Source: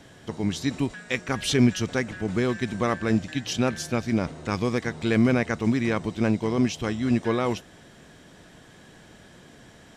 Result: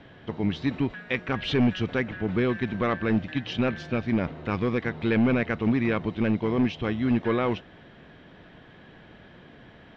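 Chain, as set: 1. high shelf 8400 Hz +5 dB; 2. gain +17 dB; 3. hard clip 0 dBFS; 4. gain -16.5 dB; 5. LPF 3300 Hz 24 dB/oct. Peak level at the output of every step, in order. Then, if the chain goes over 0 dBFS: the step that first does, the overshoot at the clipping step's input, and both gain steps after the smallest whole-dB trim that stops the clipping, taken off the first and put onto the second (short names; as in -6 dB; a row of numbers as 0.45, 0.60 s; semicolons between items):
-7.5, +9.5, 0.0, -16.5, -15.0 dBFS; step 2, 9.5 dB; step 2 +7 dB, step 4 -6.5 dB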